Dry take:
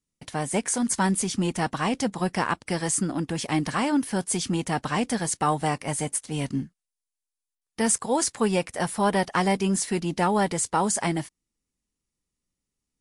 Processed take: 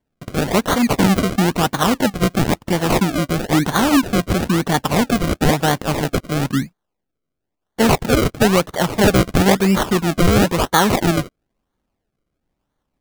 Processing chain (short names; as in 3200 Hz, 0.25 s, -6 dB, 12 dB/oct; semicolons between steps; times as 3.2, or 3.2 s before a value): decimation with a swept rate 34×, swing 100% 1 Hz; gain +9 dB